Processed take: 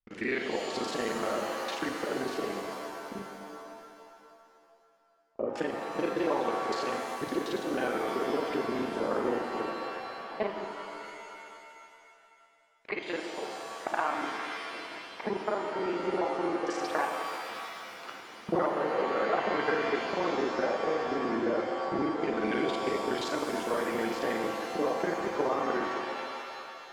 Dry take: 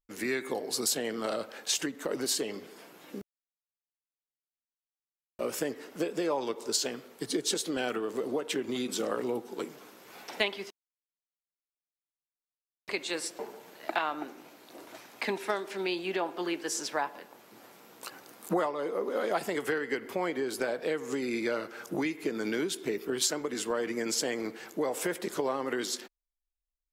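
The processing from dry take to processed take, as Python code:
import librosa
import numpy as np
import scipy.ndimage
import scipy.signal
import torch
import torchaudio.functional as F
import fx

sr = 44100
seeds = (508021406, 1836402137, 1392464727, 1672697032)

y = fx.local_reverse(x, sr, ms=35.0)
y = fx.filter_lfo_lowpass(y, sr, shape='saw_down', hz=0.18, low_hz=810.0, high_hz=3100.0, q=1.0)
y = fx.rev_shimmer(y, sr, seeds[0], rt60_s=2.5, semitones=7, shimmer_db=-2, drr_db=4.5)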